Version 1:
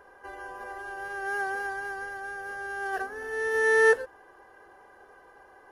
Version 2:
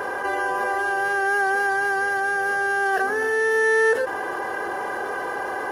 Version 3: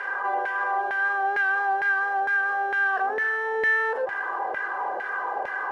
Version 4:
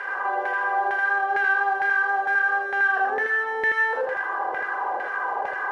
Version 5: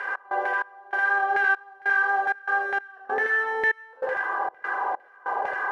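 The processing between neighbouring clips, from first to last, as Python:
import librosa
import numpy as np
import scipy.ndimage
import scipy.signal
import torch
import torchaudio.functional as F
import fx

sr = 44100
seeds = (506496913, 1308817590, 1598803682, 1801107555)

y1 = scipy.signal.sosfilt(scipy.signal.butter(2, 130.0, 'highpass', fs=sr, output='sos'), x)
y1 = fx.env_flatten(y1, sr, amount_pct=70)
y2 = fx.leveller(y1, sr, passes=1)
y2 = fx.filter_lfo_bandpass(y2, sr, shape='saw_down', hz=2.2, low_hz=600.0, high_hz=2100.0, q=2.3)
y3 = y2 + 10.0 ** (-3.0 / 20.0) * np.pad(y2, (int(80 * sr / 1000.0), 0))[:len(y2)]
y4 = fx.step_gate(y3, sr, bpm=97, pattern='x.xx..xxxx..xx', floor_db=-24.0, edge_ms=4.5)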